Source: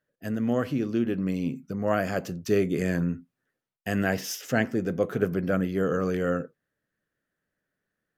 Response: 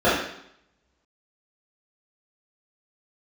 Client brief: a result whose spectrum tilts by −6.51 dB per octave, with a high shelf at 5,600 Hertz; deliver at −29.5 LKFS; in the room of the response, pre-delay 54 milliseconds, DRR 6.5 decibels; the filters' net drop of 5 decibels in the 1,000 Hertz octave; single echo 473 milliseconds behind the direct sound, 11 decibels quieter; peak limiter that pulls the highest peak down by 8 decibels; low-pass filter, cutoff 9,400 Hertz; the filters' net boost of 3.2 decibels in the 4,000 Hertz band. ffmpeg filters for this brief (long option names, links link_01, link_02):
-filter_complex "[0:a]lowpass=9400,equalizer=frequency=1000:width_type=o:gain=-8.5,equalizer=frequency=4000:width_type=o:gain=8.5,highshelf=frequency=5600:gain=-6,alimiter=limit=-18.5dB:level=0:latency=1,aecho=1:1:473:0.282,asplit=2[link_01][link_02];[1:a]atrim=start_sample=2205,adelay=54[link_03];[link_02][link_03]afir=irnorm=-1:irlink=0,volume=-29dB[link_04];[link_01][link_04]amix=inputs=2:normalize=0,volume=-1dB"